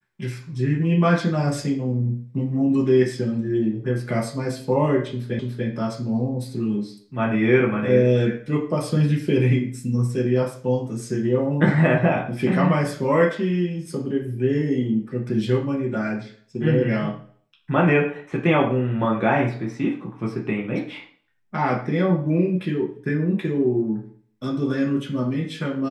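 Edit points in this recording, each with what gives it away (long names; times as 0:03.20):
0:05.39: the same again, the last 0.29 s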